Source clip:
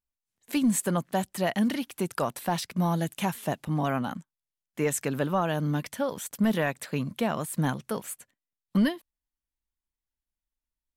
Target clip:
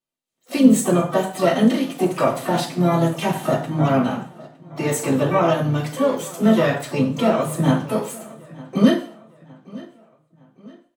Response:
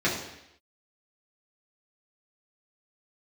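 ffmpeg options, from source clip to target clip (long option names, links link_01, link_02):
-filter_complex "[0:a]asplit=2[link_01][link_02];[link_02]adelay=911,lowpass=frequency=4400:poles=1,volume=-20.5dB,asplit=2[link_03][link_04];[link_04]adelay=911,lowpass=frequency=4400:poles=1,volume=0.44,asplit=2[link_05][link_06];[link_06]adelay=911,lowpass=frequency=4400:poles=1,volume=0.44[link_07];[link_01][link_03][link_05][link_07]amix=inputs=4:normalize=0[link_08];[1:a]atrim=start_sample=2205,asetrate=79380,aresample=44100[link_09];[link_08][link_09]afir=irnorm=-1:irlink=0,asplit=3[link_10][link_11][link_12];[link_11]asetrate=35002,aresample=44100,atempo=1.25992,volume=-13dB[link_13];[link_12]asetrate=88200,aresample=44100,atempo=0.5,volume=-12dB[link_14];[link_10][link_13][link_14]amix=inputs=3:normalize=0,volume=-2dB"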